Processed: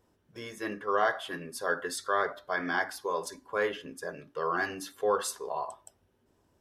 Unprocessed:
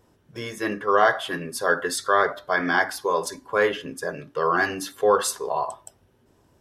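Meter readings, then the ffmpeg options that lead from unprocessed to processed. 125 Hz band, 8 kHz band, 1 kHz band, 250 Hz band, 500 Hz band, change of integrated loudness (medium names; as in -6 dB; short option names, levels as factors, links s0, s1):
-10.0 dB, -8.5 dB, -8.5 dB, -8.5 dB, -8.5 dB, -8.5 dB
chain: -af "equalizer=f=130:w=4.5:g=-6.5,volume=0.376"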